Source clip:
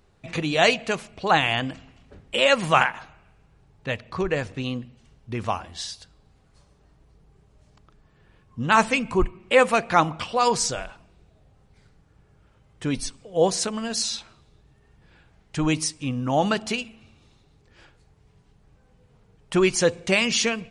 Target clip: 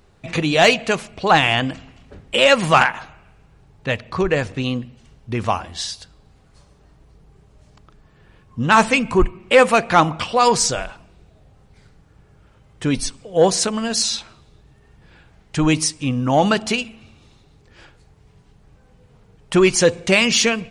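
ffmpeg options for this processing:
-af "acontrast=63"

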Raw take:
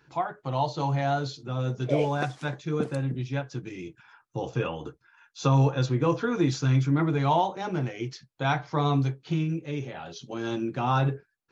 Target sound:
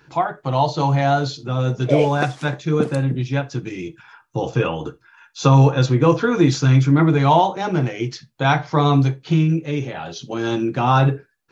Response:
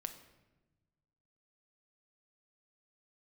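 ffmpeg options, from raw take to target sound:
-filter_complex "[0:a]asplit=2[a][b];[1:a]atrim=start_sample=2205,atrim=end_sample=3969[c];[b][c]afir=irnorm=-1:irlink=0,volume=-2dB[d];[a][d]amix=inputs=2:normalize=0,volume=5dB"

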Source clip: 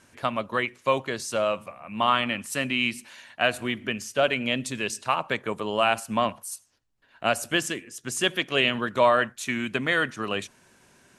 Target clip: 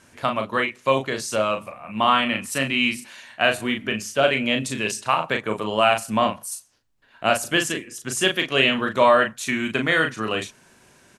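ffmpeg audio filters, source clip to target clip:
-filter_complex "[0:a]asplit=2[a][b];[b]adelay=37,volume=-5.5dB[c];[a][c]amix=inputs=2:normalize=0,volume=3dB"

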